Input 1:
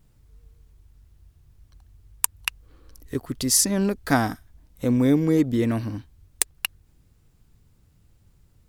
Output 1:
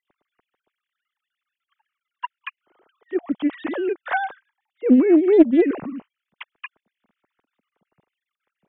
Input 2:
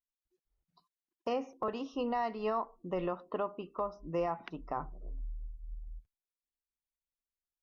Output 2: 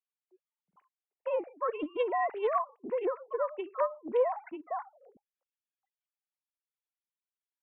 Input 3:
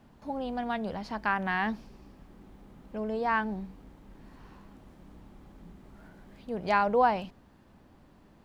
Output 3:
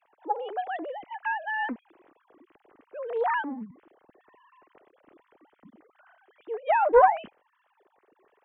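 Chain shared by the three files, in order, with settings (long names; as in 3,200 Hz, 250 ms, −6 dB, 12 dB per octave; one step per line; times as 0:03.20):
three sine waves on the formant tracks
highs frequency-modulated by the lows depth 0.23 ms
level +3.5 dB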